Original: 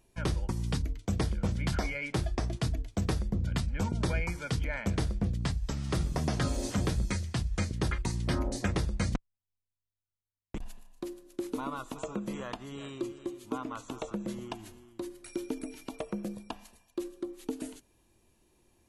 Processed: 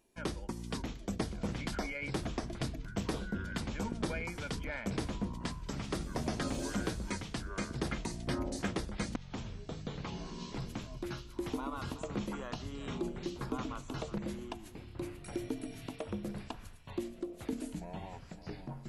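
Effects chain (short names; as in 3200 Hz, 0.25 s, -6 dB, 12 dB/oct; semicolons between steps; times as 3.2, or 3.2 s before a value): resonant low shelf 170 Hz -7.5 dB, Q 1.5; echoes that change speed 0.461 s, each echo -7 st, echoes 3, each echo -6 dB; gain -4 dB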